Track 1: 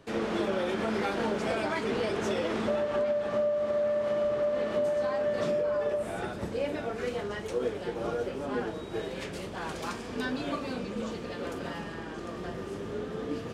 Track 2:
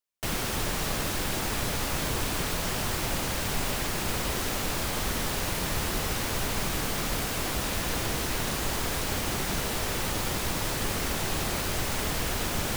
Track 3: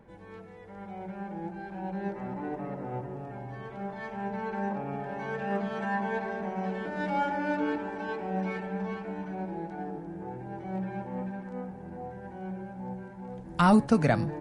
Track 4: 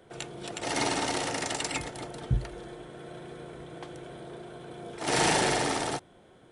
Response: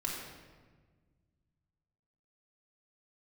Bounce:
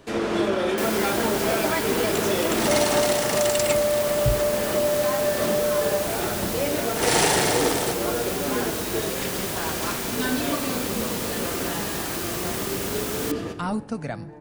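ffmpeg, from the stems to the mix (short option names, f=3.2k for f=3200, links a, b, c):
-filter_complex "[0:a]volume=2.5dB,asplit=2[a][b];[b]volume=-6dB[c];[1:a]highpass=f=130:p=1,adelay=550,volume=-2.5dB[d];[2:a]volume=-7.5dB,asplit=2[e][f];[f]volume=-22.5dB[g];[3:a]adelay=1950,volume=3dB[h];[4:a]atrim=start_sample=2205[i];[c][g]amix=inputs=2:normalize=0[j];[j][i]afir=irnorm=-1:irlink=0[k];[a][d][e][h][k]amix=inputs=5:normalize=0,highshelf=f=6.6k:g=7"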